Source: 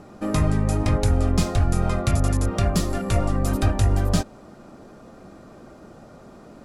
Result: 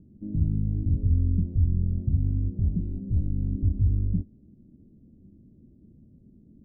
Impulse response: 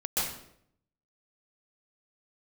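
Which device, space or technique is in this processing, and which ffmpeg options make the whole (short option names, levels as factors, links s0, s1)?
the neighbour's flat through the wall: -af "lowpass=f=270:w=0.5412,lowpass=f=270:w=1.3066,equalizer=f=83:t=o:w=0.44:g=6,volume=0.531"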